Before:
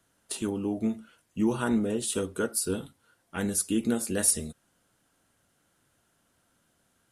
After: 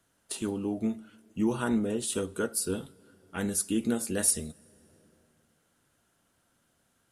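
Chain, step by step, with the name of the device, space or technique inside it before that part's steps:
compressed reverb return (on a send at −12.5 dB: convolution reverb RT60 2.0 s, pre-delay 65 ms + downward compressor 5 to 1, threshold −42 dBFS, peak gain reduction 18 dB)
on the sum: level −1.5 dB

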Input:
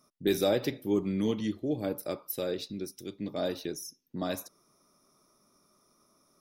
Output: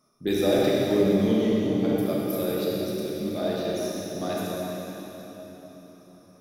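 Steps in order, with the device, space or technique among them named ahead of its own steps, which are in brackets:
swimming-pool hall (convolution reverb RT60 4.2 s, pre-delay 24 ms, DRR −6 dB; high-shelf EQ 5,800 Hz −5 dB)

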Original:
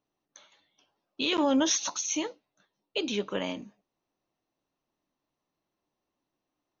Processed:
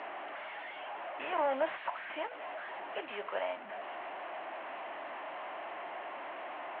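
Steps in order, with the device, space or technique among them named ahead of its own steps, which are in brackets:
digital answering machine (band-pass filter 380–3,100 Hz; linear delta modulator 16 kbit/s, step −37 dBFS; loudspeaker in its box 470–4,200 Hz, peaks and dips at 470 Hz −7 dB, 680 Hz +6 dB, 1,300 Hz −3 dB, 2,500 Hz −4 dB, 3,600 Hz −9 dB)
dynamic equaliser 310 Hz, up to −7 dB, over −54 dBFS, Q 1.6
level +2 dB

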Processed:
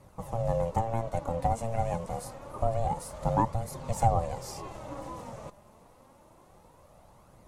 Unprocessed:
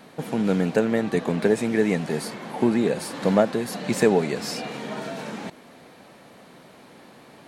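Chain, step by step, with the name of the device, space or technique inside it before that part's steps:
flat-topped bell 2,300 Hz −10.5 dB 2.4 octaves
alien voice (ring modulation 340 Hz; flanger 0.27 Hz, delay 0.4 ms, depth 4.6 ms, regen +54%)

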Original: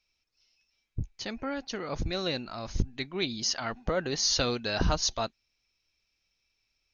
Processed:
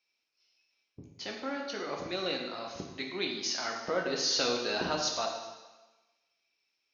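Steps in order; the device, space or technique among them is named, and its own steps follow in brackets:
supermarket ceiling speaker (band-pass filter 270–5,700 Hz; convolution reverb RT60 1.2 s, pre-delay 9 ms, DRR 0.5 dB)
level −3 dB

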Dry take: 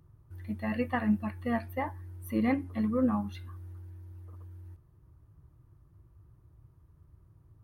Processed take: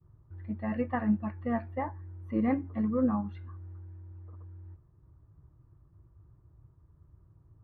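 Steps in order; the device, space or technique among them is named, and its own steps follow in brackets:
hearing-loss simulation (low-pass filter 1,600 Hz 12 dB per octave; downward expander −58 dBFS)

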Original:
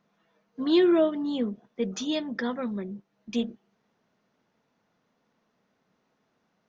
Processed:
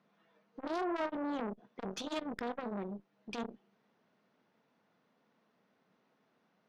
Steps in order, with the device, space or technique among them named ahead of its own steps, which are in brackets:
valve radio (band-pass filter 140–4,600 Hz; tube saturation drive 29 dB, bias 0.5; saturating transformer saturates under 830 Hz)
level +1 dB

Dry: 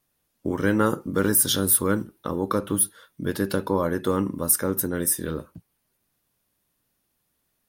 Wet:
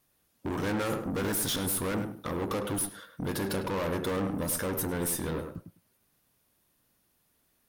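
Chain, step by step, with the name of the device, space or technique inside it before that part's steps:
rockabilly slapback (tube saturation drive 32 dB, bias 0.4; tape delay 103 ms, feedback 20%, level −5 dB, low-pass 1,700 Hz)
level +3.5 dB

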